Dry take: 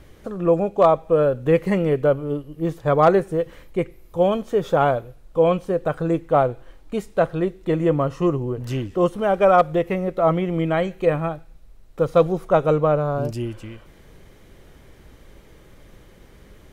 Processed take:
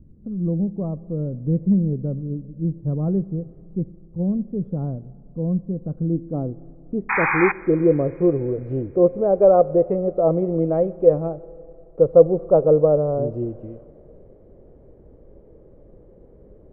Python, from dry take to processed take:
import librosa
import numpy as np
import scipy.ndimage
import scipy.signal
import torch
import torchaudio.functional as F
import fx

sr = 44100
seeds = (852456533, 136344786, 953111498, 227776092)

y = fx.filter_sweep_lowpass(x, sr, from_hz=210.0, to_hz=510.0, start_s=5.76, end_s=8.39, q=2.3)
y = fx.spec_paint(y, sr, seeds[0], shape='noise', start_s=7.09, length_s=0.43, low_hz=760.0, high_hz=2500.0, level_db=-19.0)
y = fx.rev_spring(y, sr, rt60_s=3.2, pass_ms=(30, 47, 57), chirp_ms=35, drr_db=19.5)
y = y * librosa.db_to_amplitude(-2.0)